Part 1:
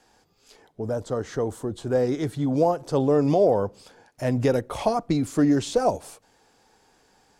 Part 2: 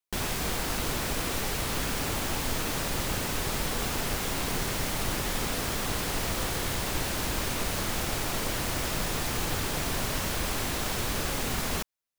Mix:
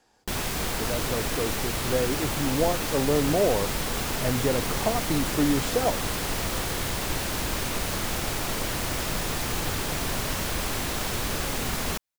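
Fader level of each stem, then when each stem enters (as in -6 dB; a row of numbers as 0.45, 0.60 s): -4.0, +1.5 dB; 0.00, 0.15 s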